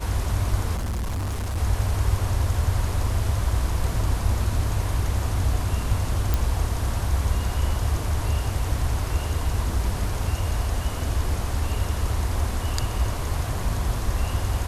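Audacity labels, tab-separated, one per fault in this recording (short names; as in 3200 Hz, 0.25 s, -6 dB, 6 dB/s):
0.760000	1.580000	clipped -24 dBFS
6.340000	6.340000	pop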